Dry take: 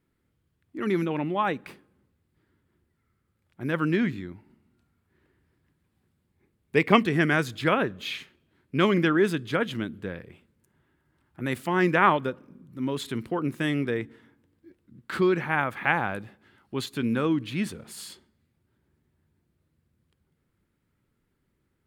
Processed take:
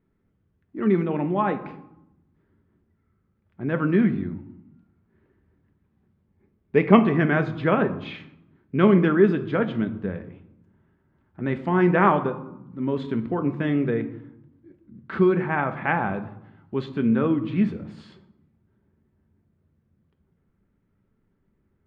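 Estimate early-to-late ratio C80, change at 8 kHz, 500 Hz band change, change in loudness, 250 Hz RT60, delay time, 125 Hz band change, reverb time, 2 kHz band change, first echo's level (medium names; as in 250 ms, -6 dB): 16.0 dB, under -20 dB, +4.0 dB, +3.5 dB, 1.2 s, no echo, +5.0 dB, 0.80 s, -1.5 dB, no echo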